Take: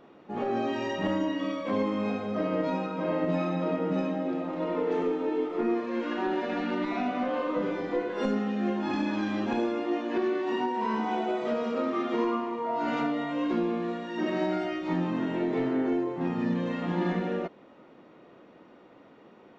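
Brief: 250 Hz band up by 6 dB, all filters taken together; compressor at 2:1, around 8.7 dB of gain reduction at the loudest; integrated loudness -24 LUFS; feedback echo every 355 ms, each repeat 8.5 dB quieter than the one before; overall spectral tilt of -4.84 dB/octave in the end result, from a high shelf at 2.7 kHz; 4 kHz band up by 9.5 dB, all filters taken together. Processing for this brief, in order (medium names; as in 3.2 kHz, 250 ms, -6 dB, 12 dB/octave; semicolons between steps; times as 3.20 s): peaking EQ 250 Hz +7.5 dB; treble shelf 2.7 kHz +5.5 dB; peaking EQ 4 kHz +8.5 dB; compression 2:1, threshold -35 dBFS; feedback delay 355 ms, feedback 38%, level -8.5 dB; trim +8 dB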